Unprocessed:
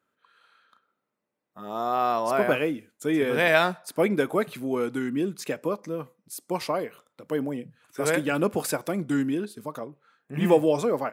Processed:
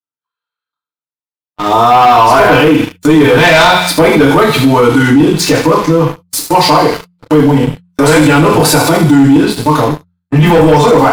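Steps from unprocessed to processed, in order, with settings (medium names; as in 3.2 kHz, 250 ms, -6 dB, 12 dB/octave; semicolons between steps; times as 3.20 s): graphic EQ 125/1000/4000 Hz +9/+9/+9 dB; on a send: feedback echo behind a high-pass 77 ms, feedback 53%, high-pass 2.5 kHz, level -7 dB; on the sum: FDN reverb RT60 0.41 s, low-frequency decay 0.85×, high-frequency decay 0.9×, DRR -8.5 dB; waveshaping leveller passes 3; gate -24 dBFS, range -35 dB; bass shelf 120 Hz +7 dB; de-hum 88.31 Hz, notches 2; peak limiter -3 dBFS, peak gain reduction 11 dB; trim +2 dB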